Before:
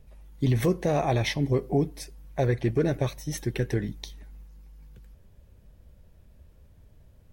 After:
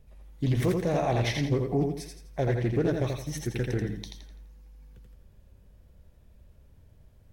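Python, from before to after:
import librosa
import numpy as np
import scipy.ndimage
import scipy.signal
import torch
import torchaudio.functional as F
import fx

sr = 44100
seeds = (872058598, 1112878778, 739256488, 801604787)

y = fx.echo_feedback(x, sr, ms=84, feedback_pct=36, wet_db=-4)
y = fx.doppler_dist(y, sr, depth_ms=0.23)
y = y * librosa.db_to_amplitude(-3.0)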